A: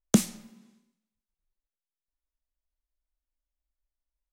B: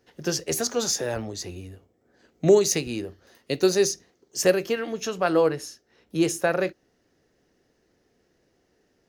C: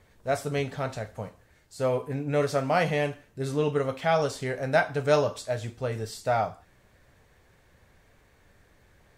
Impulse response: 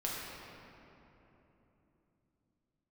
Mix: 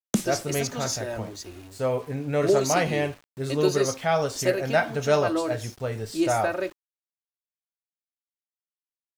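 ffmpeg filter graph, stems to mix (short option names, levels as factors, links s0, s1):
-filter_complex "[0:a]volume=0.668[s0];[1:a]aecho=1:1:3.2:0.68,volume=0.501[s1];[2:a]volume=1.06[s2];[s0][s1][s2]amix=inputs=3:normalize=0,aeval=exprs='val(0)*gte(abs(val(0)),0.00562)':c=same"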